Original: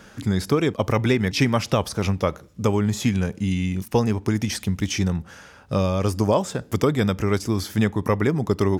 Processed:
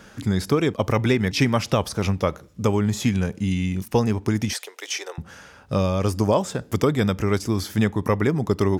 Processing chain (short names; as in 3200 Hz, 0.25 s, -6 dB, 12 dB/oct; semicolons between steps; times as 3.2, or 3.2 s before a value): 4.53–5.18 steep high-pass 410 Hz 48 dB/oct